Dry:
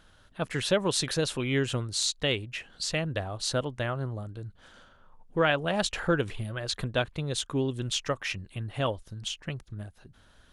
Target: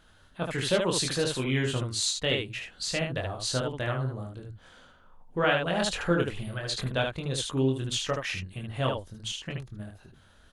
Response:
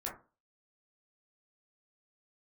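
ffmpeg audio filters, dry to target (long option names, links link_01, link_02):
-af "bandreject=frequency=5500:width=27,aecho=1:1:23|76:0.668|0.631,volume=-2dB"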